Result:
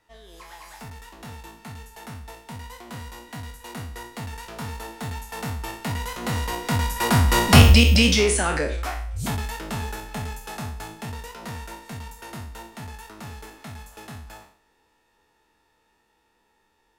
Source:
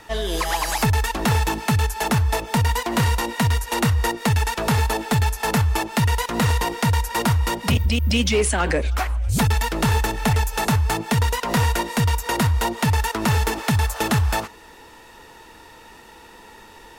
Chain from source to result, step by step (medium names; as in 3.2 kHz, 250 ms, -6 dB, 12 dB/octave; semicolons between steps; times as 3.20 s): spectral sustain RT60 0.53 s; Doppler pass-by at 7.66 s, 7 m/s, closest 1.6 m; trim +7 dB